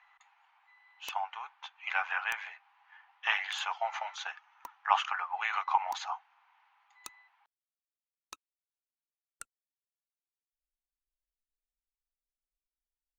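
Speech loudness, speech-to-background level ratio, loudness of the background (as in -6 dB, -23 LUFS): -33.5 LUFS, 19.5 dB, -53.0 LUFS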